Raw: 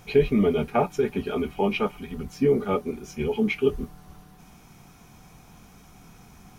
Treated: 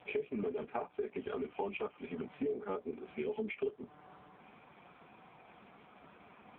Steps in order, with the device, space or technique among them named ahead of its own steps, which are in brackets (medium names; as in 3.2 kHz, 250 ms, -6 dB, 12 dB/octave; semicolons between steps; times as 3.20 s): voicemail (band-pass 320–3000 Hz; compression 6:1, threshold -36 dBFS, peak gain reduction 19 dB; trim +2 dB; AMR-NB 5.15 kbps 8 kHz)